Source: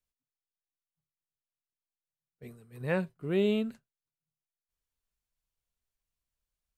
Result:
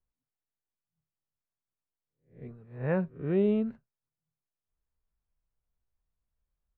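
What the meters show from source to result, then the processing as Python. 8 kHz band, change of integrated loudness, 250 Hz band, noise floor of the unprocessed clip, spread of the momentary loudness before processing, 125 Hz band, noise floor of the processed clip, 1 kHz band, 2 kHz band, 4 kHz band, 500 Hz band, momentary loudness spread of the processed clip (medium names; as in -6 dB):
no reading, +1.5 dB, +2.5 dB, under -85 dBFS, 13 LU, +3.0 dB, under -85 dBFS, +0.5 dB, -4.0 dB, under -10 dB, +1.0 dB, 22 LU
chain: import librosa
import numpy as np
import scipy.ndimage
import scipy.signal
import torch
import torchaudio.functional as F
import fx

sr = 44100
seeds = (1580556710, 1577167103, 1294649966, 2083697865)

y = fx.spec_swells(x, sr, rise_s=0.35)
y = scipy.signal.sosfilt(scipy.signal.butter(2, 1400.0, 'lowpass', fs=sr, output='sos'), y)
y = fx.low_shelf(y, sr, hz=160.0, db=6.5)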